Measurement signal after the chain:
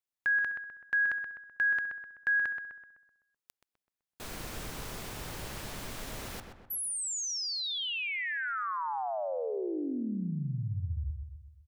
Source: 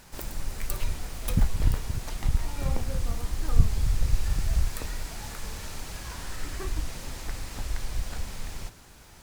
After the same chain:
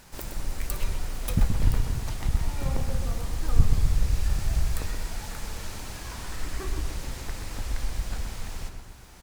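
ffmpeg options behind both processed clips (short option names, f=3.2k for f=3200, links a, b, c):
-filter_complex "[0:a]asplit=2[a][b];[b]adelay=127,lowpass=f=2.2k:p=1,volume=-5.5dB,asplit=2[c][d];[d]adelay=127,lowpass=f=2.2k:p=1,volume=0.52,asplit=2[e][f];[f]adelay=127,lowpass=f=2.2k:p=1,volume=0.52,asplit=2[g][h];[h]adelay=127,lowpass=f=2.2k:p=1,volume=0.52,asplit=2[i][j];[j]adelay=127,lowpass=f=2.2k:p=1,volume=0.52,asplit=2[k][l];[l]adelay=127,lowpass=f=2.2k:p=1,volume=0.52,asplit=2[m][n];[n]adelay=127,lowpass=f=2.2k:p=1,volume=0.52[o];[a][c][e][g][i][k][m][o]amix=inputs=8:normalize=0"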